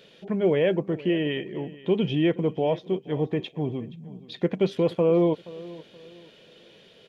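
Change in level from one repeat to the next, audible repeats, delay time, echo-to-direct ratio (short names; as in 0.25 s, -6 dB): -9.5 dB, 2, 0.475 s, -18.5 dB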